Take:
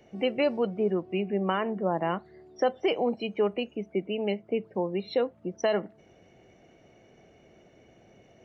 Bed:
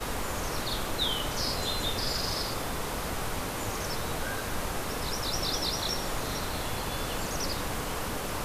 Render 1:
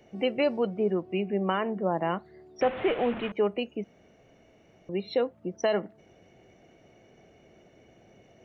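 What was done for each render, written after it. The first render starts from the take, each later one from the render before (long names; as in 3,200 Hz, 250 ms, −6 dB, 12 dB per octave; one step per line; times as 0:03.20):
0:02.61–0:03.32: linear delta modulator 16 kbit/s, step −30 dBFS
0:03.84–0:04.89: fill with room tone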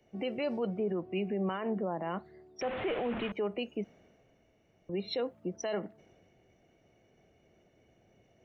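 brickwall limiter −25.5 dBFS, peak gain reduction 11.5 dB
multiband upward and downward expander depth 40%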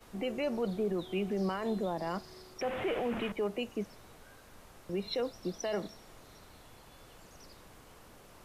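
mix in bed −23 dB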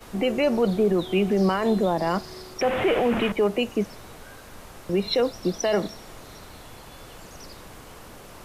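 level +11.5 dB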